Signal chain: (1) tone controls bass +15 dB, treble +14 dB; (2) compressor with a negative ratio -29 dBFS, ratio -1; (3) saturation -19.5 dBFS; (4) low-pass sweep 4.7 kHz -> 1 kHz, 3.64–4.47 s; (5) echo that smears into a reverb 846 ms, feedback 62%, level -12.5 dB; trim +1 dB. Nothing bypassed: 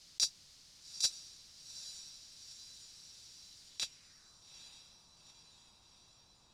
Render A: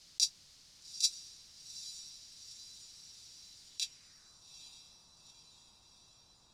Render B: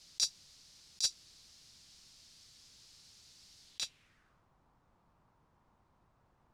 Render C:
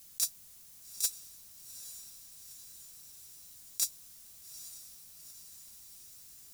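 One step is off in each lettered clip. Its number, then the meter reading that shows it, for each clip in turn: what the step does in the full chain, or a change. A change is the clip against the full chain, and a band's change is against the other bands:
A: 3, distortion -13 dB; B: 5, echo-to-direct -10.5 dB to none; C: 4, 8 kHz band +8.0 dB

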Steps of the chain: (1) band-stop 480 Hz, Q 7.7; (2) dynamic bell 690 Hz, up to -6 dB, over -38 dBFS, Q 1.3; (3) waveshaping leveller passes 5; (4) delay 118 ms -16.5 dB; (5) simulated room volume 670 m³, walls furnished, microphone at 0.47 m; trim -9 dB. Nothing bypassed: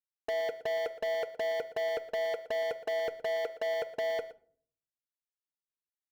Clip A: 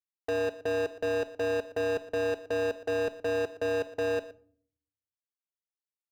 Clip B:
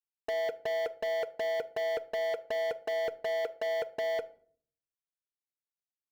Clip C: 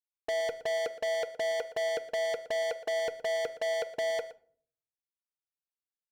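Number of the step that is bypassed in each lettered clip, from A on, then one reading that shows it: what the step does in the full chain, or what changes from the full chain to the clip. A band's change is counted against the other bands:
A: 1, 250 Hz band +17.5 dB; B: 4, echo-to-direct -11.5 dB to -13.5 dB; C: 2, 4 kHz band +3.0 dB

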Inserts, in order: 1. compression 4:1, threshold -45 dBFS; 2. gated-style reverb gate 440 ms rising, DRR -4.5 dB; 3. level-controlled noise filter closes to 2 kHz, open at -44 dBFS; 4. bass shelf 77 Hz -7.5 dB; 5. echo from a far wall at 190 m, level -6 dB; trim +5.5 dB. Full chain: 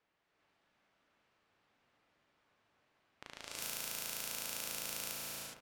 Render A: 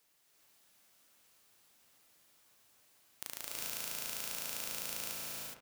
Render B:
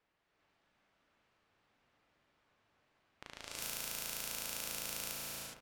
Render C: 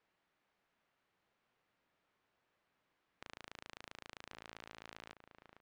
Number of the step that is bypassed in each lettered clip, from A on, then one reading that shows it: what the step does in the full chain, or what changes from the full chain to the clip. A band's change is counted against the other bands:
3, crest factor change +4.5 dB; 4, 125 Hz band +2.0 dB; 2, momentary loudness spread change -6 LU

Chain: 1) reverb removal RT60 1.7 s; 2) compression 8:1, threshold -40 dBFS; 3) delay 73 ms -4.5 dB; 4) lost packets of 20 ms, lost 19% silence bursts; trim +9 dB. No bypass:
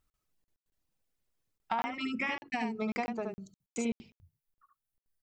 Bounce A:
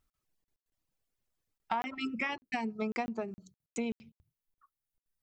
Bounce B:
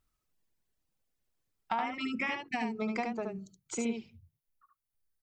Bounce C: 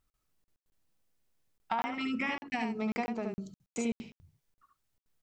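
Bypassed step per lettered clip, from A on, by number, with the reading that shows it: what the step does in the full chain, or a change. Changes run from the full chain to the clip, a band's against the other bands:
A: 3, 8 kHz band -3.5 dB; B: 4, 8 kHz band +3.5 dB; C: 1, 125 Hz band +2.5 dB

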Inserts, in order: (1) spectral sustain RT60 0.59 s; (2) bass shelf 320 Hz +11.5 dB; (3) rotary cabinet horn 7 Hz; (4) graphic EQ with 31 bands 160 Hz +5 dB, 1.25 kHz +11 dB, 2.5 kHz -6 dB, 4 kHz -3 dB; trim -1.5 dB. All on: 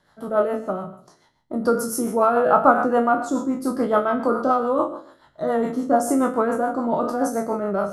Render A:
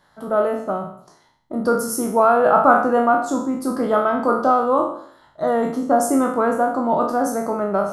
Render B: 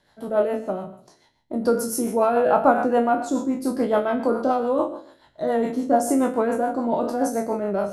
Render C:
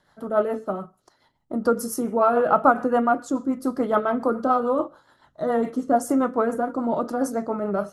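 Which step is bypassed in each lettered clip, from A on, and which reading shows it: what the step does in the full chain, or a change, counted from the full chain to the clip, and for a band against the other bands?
3, 250 Hz band -1.5 dB; 4, loudness change -1.0 LU; 1, 8 kHz band -2.0 dB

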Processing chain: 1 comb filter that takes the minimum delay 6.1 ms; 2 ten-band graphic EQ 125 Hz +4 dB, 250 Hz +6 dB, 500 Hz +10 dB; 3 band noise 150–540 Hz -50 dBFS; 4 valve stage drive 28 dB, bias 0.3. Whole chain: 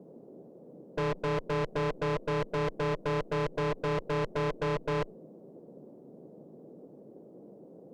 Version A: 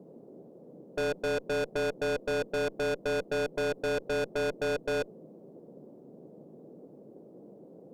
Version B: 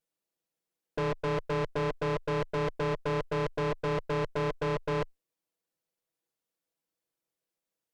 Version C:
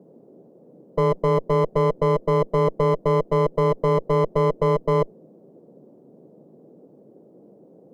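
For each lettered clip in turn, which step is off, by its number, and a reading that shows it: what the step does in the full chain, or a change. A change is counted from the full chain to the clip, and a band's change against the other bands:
1, 125 Hz band -11.0 dB; 3, momentary loudness spread change -18 LU; 4, crest factor change +6.5 dB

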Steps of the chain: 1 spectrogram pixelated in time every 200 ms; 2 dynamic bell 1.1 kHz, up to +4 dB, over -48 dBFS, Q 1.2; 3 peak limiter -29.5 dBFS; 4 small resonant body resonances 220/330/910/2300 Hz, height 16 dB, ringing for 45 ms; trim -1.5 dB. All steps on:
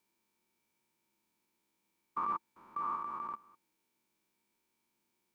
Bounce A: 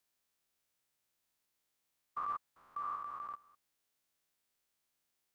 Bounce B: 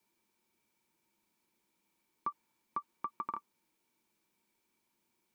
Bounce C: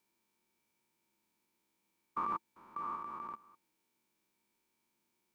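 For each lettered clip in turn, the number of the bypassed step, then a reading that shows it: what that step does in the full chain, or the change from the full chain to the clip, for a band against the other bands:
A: 4, crest factor change -2.0 dB; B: 1, crest factor change +6.0 dB; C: 2, 1 kHz band -3.0 dB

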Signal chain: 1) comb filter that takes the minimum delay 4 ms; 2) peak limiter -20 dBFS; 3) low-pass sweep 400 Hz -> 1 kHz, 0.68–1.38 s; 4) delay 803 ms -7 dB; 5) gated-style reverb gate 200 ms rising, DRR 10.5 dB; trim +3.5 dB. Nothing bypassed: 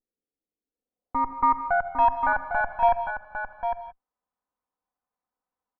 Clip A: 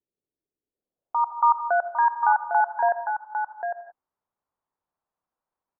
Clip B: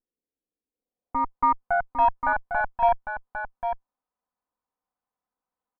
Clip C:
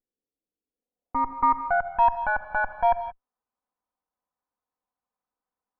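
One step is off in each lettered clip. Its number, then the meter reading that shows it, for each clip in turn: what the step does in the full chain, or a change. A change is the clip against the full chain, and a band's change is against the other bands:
1, loudness change +1.5 LU; 5, echo-to-direct -5.0 dB to -7.0 dB; 4, echo-to-direct -5.0 dB to -10.5 dB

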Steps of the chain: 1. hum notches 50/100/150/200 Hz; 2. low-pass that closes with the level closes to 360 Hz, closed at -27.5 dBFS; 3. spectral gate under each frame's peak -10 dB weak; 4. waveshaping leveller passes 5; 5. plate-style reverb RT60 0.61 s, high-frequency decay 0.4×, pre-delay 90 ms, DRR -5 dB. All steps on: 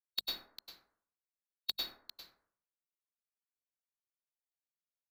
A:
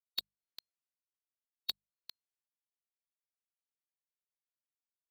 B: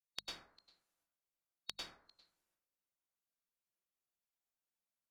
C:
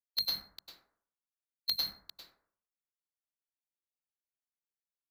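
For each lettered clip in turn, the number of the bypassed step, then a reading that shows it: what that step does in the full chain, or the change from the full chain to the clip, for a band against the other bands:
5, momentary loudness spread change -3 LU; 4, crest factor change +8.0 dB; 2, 4 kHz band +4.5 dB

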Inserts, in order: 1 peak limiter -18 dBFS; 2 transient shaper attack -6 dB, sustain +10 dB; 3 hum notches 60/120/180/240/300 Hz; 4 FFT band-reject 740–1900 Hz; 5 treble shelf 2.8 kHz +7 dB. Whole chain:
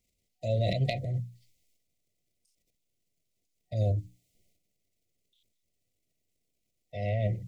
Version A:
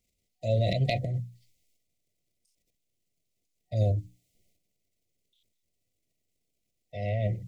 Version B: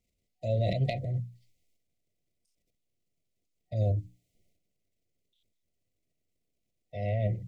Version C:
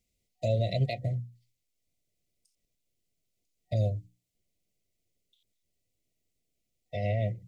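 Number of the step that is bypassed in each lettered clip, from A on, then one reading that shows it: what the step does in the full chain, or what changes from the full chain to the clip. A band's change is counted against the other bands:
1, loudness change +1.5 LU; 5, crest factor change -3.0 dB; 2, crest factor change -3.5 dB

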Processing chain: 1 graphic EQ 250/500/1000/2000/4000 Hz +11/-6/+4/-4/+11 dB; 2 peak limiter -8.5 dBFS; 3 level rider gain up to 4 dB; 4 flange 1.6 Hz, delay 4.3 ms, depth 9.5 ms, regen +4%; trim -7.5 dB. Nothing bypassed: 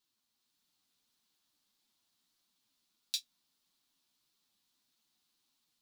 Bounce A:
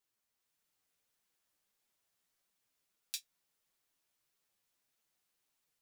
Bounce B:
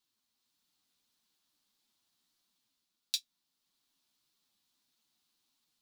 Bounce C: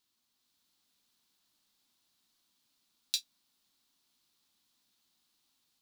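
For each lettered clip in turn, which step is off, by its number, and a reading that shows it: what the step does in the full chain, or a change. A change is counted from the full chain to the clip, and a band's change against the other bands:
1, crest factor change +5.0 dB; 2, mean gain reduction 2.5 dB; 4, loudness change +3.0 LU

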